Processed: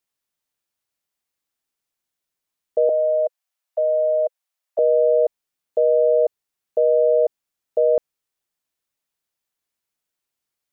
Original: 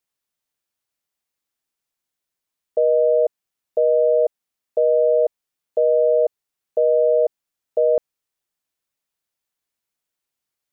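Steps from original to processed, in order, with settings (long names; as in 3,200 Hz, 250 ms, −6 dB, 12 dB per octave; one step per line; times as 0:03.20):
0:02.89–0:04.79: Butterworth high-pass 520 Hz 96 dB per octave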